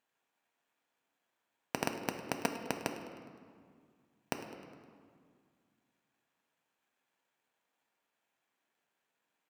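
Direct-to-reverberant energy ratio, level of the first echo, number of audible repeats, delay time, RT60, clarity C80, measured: 4.5 dB, -17.0 dB, 1, 103 ms, 2.1 s, 8.0 dB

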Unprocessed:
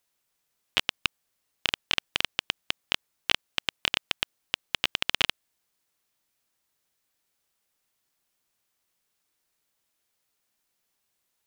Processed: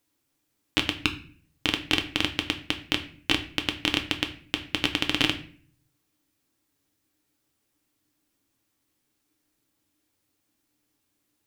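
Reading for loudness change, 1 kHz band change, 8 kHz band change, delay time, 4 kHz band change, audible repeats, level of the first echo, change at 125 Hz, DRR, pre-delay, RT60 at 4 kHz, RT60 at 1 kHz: +2.0 dB, +2.0 dB, +1.0 dB, no echo, +1.0 dB, no echo, no echo, +11.0 dB, 4.5 dB, 4 ms, 0.40 s, 0.45 s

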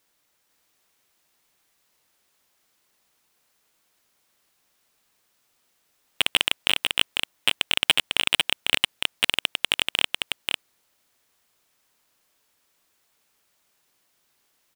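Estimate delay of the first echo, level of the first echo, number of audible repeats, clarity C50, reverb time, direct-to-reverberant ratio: 499 ms, -4.0 dB, 1, no reverb, no reverb, no reverb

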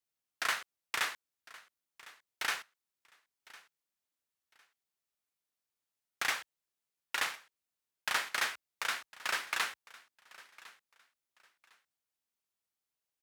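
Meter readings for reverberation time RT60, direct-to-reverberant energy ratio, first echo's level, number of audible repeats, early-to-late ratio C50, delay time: no reverb, no reverb, -20.5 dB, 2, no reverb, 1055 ms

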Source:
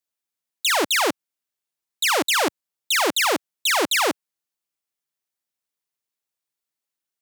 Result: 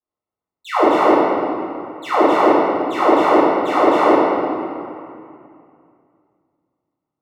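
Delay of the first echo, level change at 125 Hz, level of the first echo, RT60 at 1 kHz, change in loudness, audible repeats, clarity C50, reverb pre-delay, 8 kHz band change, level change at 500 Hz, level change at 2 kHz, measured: no echo, +13.0 dB, no echo, 2.4 s, +5.0 dB, no echo, -3.5 dB, 4 ms, under -15 dB, +12.5 dB, -2.5 dB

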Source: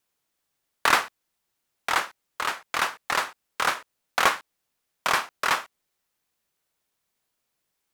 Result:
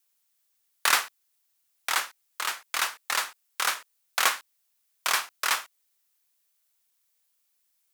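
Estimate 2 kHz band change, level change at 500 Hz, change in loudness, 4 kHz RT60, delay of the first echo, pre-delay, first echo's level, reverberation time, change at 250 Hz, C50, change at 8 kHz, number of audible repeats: -2.5 dB, -8.5 dB, -1.5 dB, no reverb, no echo, no reverb, no echo, no reverb, -12.0 dB, no reverb, +4.5 dB, no echo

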